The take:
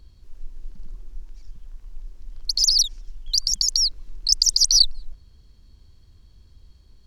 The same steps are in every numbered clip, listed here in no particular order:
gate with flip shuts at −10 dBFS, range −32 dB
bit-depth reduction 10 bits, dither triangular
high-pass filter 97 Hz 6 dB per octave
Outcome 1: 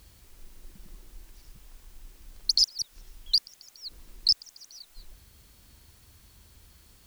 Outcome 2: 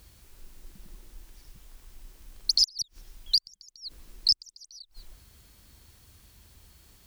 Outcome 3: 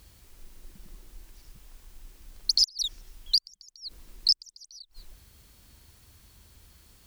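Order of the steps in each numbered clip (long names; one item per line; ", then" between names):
gate with flip, then high-pass filter, then bit-depth reduction
bit-depth reduction, then gate with flip, then high-pass filter
high-pass filter, then bit-depth reduction, then gate with flip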